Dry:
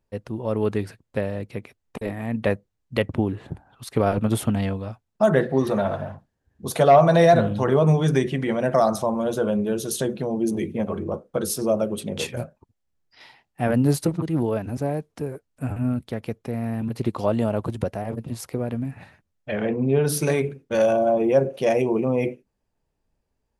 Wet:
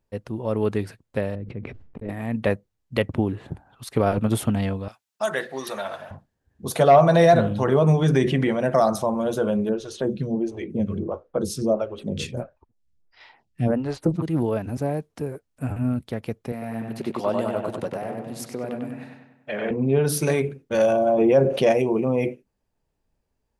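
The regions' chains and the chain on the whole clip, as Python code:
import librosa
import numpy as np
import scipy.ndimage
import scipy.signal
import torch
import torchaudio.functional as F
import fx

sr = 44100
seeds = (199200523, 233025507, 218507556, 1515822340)

y = fx.chain(x, sr, fx.lowpass(hz=1300.0, slope=12),
    fx.peak_eq(hz=910.0, db=-12.0, octaves=2.4),
    fx.sustainer(db_per_s=53.0), at=(1.35, 2.09))
y = fx.chain(y, sr, fx.highpass(hz=1400.0, slope=6),
    fx.high_shelf(hz=2100.0, db=7.0), at=(4.88, 6.11))
y = fx.chain(y, sr, fx.high_shelf(hz=6600.0, db=-6.5),
    fx.env_flatten(amount_pct=50), at=(8.02, 8.49))
y = fx.chain(y, sr, fx.lowpass(hz=7100.0, slope=12),
    fx.low_shelf(hz=140.0, db=10.0),
    fx.stagger_phaser(hz=1.5), at=(9.69, 14.16))
y = fx.chain(y, sr, fx.highpass(hz=160.0, slope=12),
    fx.low_shelf(hz=390.0, db=-6.0),
    fx.echo_filtered(ms=97, feedback_pct=52, hz=3300.0, wet_db=-3.0), at=(16.52, 19.71))
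y = fx.chain(y, sr, fx.high_shelf(hz=9200.0, db=-11.5),
    fx.env_flatten(amount_pct=50), at=(21.18, 21.72))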